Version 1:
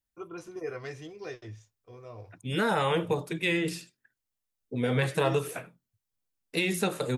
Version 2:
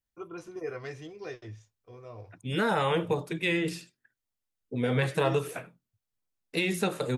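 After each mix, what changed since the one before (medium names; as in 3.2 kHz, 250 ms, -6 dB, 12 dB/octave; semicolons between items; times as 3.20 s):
master: add treble shelf 6.4 kHz -4.5 dB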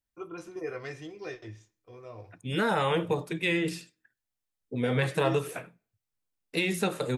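reverb: on, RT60 0.50 s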